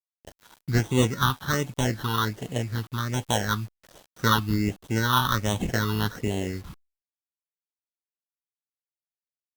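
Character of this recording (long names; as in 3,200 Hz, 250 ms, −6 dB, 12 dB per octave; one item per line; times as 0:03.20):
aliases and images of a low sample rate 2,400 Hz, jitter 0%
phaser sweep stages 6, 1.3 Hz, lowest notch 550–1,400 Hz
a quantiser's noise floor 8 bits, dither none
Opus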